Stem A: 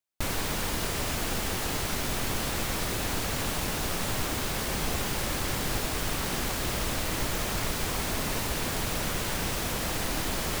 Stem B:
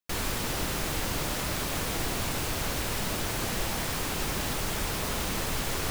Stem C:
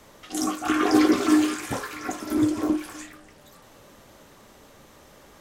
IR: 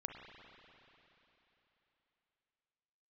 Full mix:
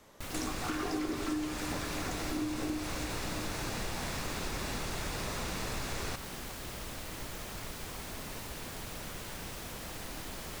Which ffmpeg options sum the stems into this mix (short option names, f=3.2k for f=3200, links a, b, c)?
-filter_complex "[0:a]volume=-12dB[a];[1:a]lowpass=8k,bandreject=f=3.1k:w=9.9,adelay=250,volume=-4dB[b];[2:a]volume=-10.5dB,asplit=2[c][d];[d]volume=-4dB[e];[3:a]atrim=start_sample=2205[f];[e][f]afir=irnorm=-1:irlink=0[g];[a][b][c][g]amix=inputs=4:normalize=0,acompressor=threshold=-32dB:ratio=5"